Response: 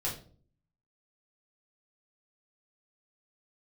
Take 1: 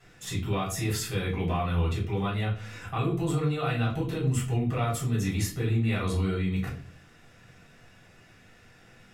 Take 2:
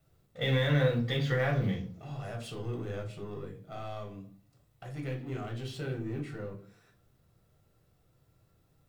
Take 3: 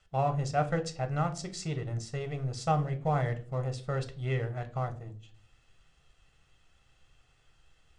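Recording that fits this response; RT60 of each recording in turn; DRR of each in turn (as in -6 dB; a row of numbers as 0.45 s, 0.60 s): 1; 0.45 s, 0.45 s, 0.45 s; -6.5 dB, 0.5 dB, 7.0 dB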